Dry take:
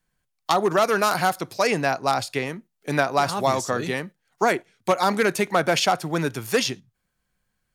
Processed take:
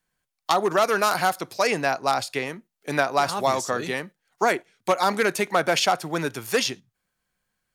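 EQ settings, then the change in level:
low-shelf EQ 200 Hz −8.5 dB
0.0 dB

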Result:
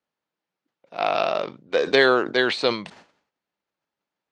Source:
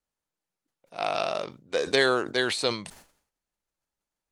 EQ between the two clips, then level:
band-pass filter 160–4,400 Hz
high-frequency loss of the air 53 metres
+6.0 dB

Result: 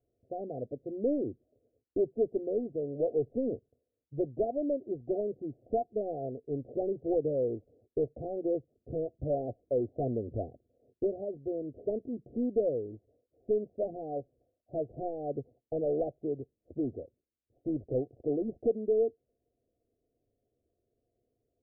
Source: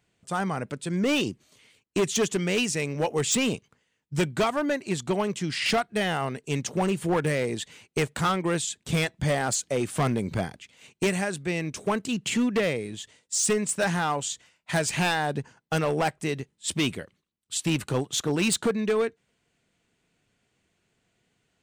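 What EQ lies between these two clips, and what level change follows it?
Chebyshev low-pass with heavy ripple 730 Hz, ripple 3 dB
phaser with its sweep stopped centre 430 Hz, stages 4
0.0 dB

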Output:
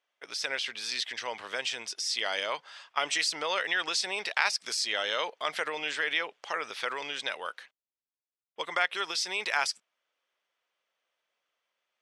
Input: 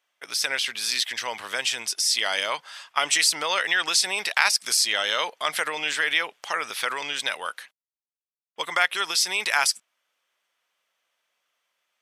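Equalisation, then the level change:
low-pass filter 6,000 Hz 12 dB per octave
parametric band 440 Hz +5 dB 1.3 octaves
−6.5 dB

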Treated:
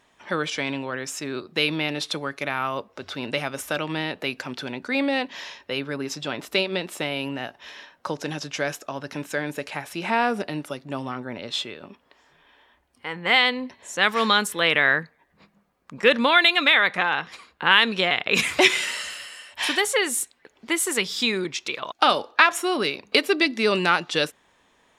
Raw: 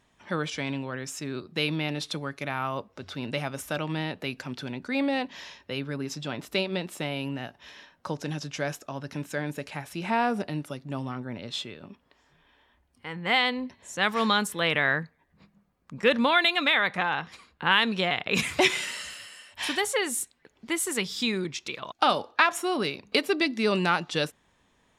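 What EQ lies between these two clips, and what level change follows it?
bass and treble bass −10 dB, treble −2 dB
dynamic equaliser 790 Hz, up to −4 dB, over −37 dBFS, Q 1.2
+6.5 dB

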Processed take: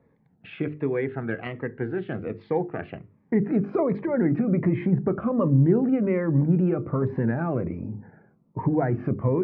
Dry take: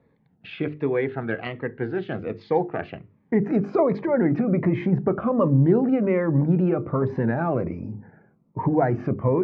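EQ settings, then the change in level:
low-pass filter 2,400 Hz 12 dB per octave
dynamic equaliser 790 Hz, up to −6 dB, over −34 dBFS, Q 0.81
0.0 dB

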